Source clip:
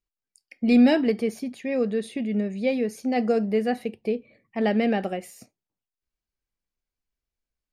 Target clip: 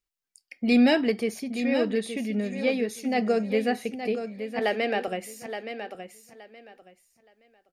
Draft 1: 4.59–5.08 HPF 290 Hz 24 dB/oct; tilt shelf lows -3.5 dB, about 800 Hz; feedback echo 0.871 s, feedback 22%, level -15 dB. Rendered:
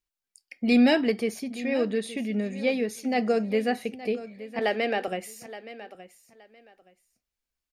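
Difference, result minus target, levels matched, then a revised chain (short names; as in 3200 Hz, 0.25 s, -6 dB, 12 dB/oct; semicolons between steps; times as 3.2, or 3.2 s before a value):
echo-to-direct -6 dB
4.59–5.08 HPF 290 Hz 24 dB/oct; tilt shelf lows -3.5 dB, about 800 Hz; feedback echo 0.871 s, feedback 22%, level -9 dB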